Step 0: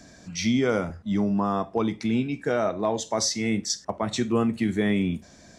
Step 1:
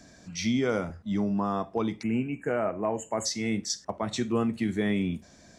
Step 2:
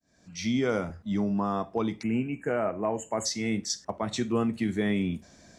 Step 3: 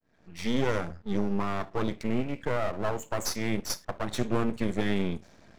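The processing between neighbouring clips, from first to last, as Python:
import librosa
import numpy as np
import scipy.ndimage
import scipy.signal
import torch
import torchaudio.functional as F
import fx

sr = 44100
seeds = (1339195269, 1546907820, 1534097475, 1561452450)

y1 = fx.spec_erase(x, sr, start_s=2.03, length_s=1.23, low_hz=3100.0, high_hz=6500.0)
y1 = y1 * 10.0 ** (-3.5 / 20.0)
y2 = fx.fade_in_head(y1, sr, length_s=0.58)
y3 = fx.env_lowpass(y2, sr, base_hz=2600.0, full_db=-23.0)
y3 = np.maximum(y3, 0.0)
y3 = y3 * 10.0 ** (3.5 / 20.0)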